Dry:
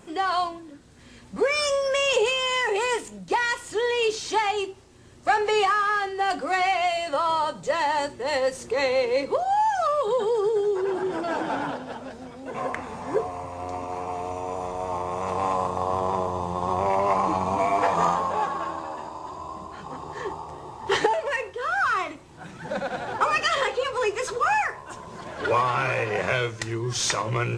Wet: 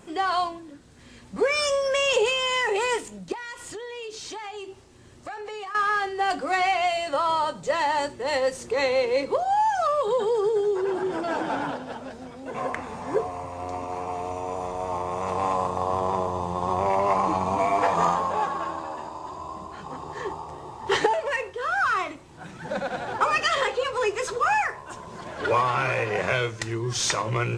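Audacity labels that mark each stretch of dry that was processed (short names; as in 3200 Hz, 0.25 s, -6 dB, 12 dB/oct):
3.320000	5.750000	compressor, threshold -34 dBFS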